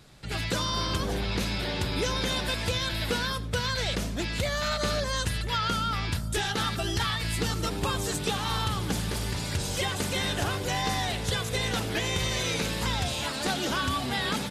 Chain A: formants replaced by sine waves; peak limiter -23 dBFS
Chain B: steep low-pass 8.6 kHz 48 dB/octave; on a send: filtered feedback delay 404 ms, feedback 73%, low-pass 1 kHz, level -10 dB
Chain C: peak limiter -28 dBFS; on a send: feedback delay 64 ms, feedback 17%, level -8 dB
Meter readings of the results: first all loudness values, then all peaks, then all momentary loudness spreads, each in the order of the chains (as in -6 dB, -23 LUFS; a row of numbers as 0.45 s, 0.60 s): -31.0 LUFS, -28.5 LUFS, -35.0 LUFS; -23.0 dBFS, -16.0 dBFS, -25.0 dBFS; 5 LU, 2 LU, 1 LU